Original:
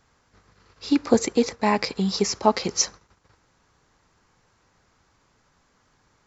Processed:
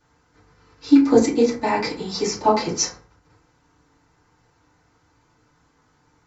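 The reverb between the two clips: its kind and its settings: FDN reverb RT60 0.39 s, low-frequency decay 1.3×, high-frequency decay 0.55×, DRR -8.5 dB; trim -7.5 dB

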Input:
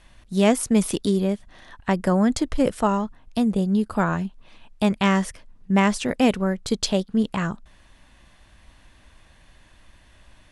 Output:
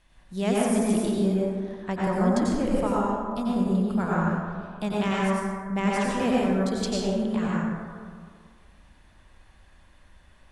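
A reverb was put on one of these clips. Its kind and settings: plate-style reverb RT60 1.9 s, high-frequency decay 0.35×, pre-delay 80 ms, DRR -6 dB; trim -10 dB

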